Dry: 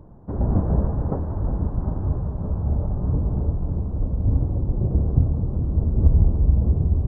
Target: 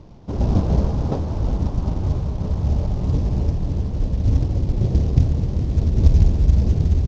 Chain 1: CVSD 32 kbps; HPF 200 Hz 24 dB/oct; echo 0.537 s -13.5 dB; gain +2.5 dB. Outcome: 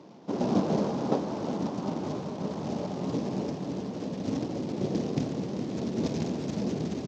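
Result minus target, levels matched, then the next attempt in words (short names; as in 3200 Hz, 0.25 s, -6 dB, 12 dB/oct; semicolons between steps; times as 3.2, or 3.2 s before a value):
250 Hz band +8.0 dB
CVSD 32 kbps; echo 0.537 s -13.5 dB; gain +2.5 dB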